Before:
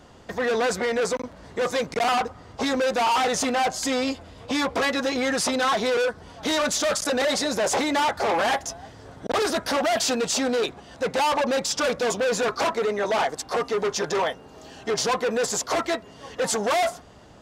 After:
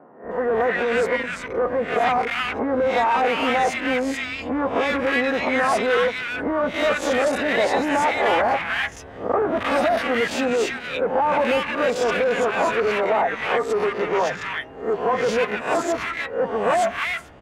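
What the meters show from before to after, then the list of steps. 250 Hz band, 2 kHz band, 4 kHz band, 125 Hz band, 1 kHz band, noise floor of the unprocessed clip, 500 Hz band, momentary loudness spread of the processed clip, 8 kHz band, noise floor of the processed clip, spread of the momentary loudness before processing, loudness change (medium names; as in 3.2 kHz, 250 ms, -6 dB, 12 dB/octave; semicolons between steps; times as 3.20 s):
+2.0 dB, +5.0 dB, -3.0 dB, +2.0 dB, +3.0 dB, -47 dBFS, +3.5 dB, 6 LU, -10.0 dB, -38 dBFS, 7 LU, +2.5 dB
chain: reverse spectral sustain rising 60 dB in 0.40 s; resonant high shelf 3.4 kHz -12.5 dB, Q 1.5; three bands offset in time mids, lows, highs 240/310 ms, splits 180/1300 Hz; trim +2.5 dB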